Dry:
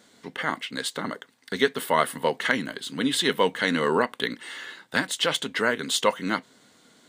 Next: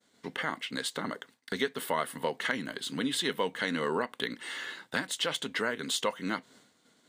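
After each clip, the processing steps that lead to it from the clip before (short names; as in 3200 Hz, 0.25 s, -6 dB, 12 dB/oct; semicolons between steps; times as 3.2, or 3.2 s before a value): expander -49 dBFS; compressor 2:1, threshold -33 dBFS, peak gain reduction 10 dB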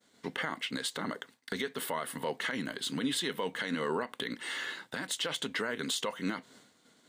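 limiter -24 dBFS, peak gain reduction 10.5 dB; gain +1.5 dB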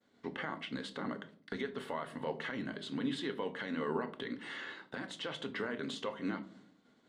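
tape spacing loss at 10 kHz 21 dB; on a send at -8 dB: reverb RT60 0.50 s, pre-delay 3 ms; on the sum: gain -2.5 dB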